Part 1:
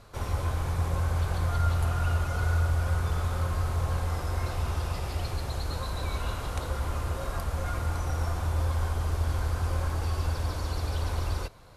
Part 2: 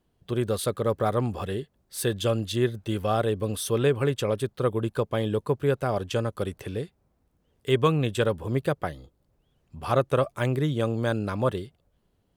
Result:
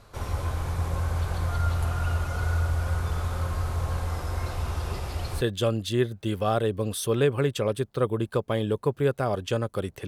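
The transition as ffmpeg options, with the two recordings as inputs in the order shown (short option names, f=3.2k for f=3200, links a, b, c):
-filter_complex "[1:a]asplit=2[a][b];[0:a]apad=whole_dur=10.07,atrim=end=10.07,atrim=end=5.412[c];[b]atrim=start=2.038:end=6.7[d];[a]atrim=start=1.5:end=2.04,asetpts=PTS-STARTPTS,volume=-12.5dB,afade=t=in:d=0.004:c=hsin,afade=t=out:st=0.536:d=0.004:c=hsin,adelay=4870[e];[c][d]acrossfade=d=0.004:c1=hsin:c2=hsin[f];[f][e]amix=inputs=2:normalize=0"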